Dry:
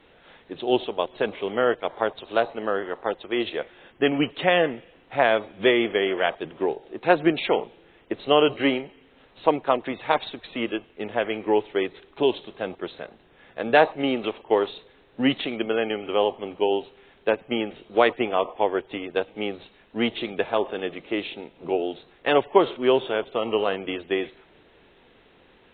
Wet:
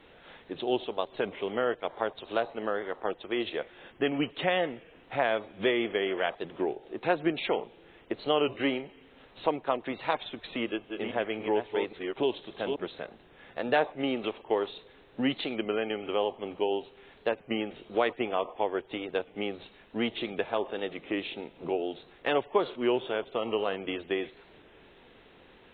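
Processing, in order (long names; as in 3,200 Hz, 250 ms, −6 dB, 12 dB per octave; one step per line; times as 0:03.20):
0:10.57–0:12.86: delay that plays each chunk backwards 274 ms, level −7 dB
downward compressor 1.5 to 1, threshold −36 dBFS, peak gain reduction 9 dB
wow of a warped record 33 1/3 rpm, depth 100 cents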